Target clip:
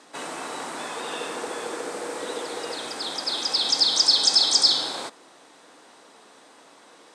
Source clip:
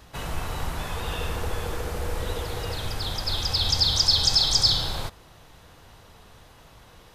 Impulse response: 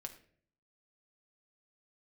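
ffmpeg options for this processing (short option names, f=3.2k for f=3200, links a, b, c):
-af "highpass=f=260:w=0.5412,highpass=f=260:w=1.3066,equalizer=f=280:t=q:w=4:g=5,equalizer=f=2.9k:t=q:w=4:g=-4,equalizer=f=8.4k:t=q:w=4:g=8,lowpass=f=9.3k:w=0.5412,lowpass=f=9.3k:w=1.3066,volume=2dB"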